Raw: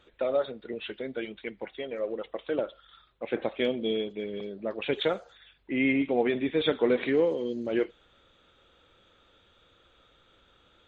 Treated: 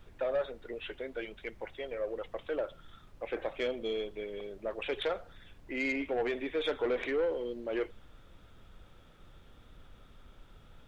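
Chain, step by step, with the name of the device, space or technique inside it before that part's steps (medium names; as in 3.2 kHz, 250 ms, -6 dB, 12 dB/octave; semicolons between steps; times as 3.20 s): aircraft cabin announcement (band-pass 420–3000 Hz; saturation -23.5 dBFS, distortion -15 dB; brown noise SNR 16 dB); trim -1 dB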